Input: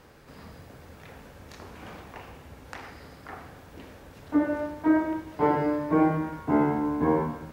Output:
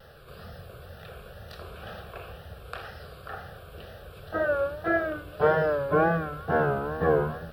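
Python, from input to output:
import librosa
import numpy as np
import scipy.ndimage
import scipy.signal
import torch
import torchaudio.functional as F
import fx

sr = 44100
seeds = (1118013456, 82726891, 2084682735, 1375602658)

y = fx.dynamic_eq(x, sr, hz=1600.0, q=1.2, threshold_db=-41.0, ratio=4.0, max_db=4)
y = fx.fixed_phaser(y, sr, hz=1400.0, stages=8)
y = fx.wow_flutter(y, sr, seeds[0], rate_hz=2.1, depth_cents=110.0)
y = F.gain(torch.from_numpy(y), 5.5).numpy()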